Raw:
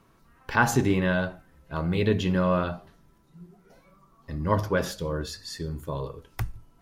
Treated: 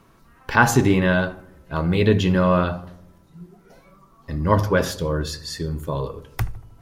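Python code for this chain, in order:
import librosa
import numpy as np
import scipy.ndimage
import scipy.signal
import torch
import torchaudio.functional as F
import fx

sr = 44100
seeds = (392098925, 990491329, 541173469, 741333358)

y = fx.echo_filtered(x, sr, ms=78, feedback_pct=65, hz=1200.0, wet_db=-16.0)
y = F.gain(torch.from_numpy(y), 6.0).numpy()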